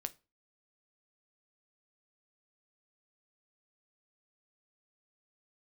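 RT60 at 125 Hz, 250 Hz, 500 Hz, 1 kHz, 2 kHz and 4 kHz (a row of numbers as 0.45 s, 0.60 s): 0.35 s, 0.35 s, 0.30 s, 0.30 s, 0.25 s, 0.25 s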